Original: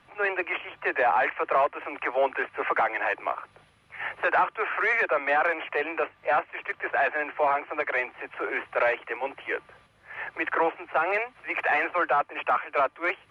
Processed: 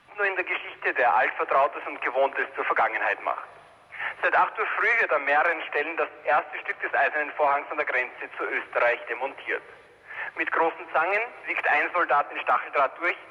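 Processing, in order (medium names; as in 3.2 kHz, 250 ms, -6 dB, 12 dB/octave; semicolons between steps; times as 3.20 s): bass shelf 400 Hz -5.5 dB; on a send: reverberation RT60 2.8 s, pre-delay 7 ms, DRR 18 dB; on the sum: trim +2.5 dB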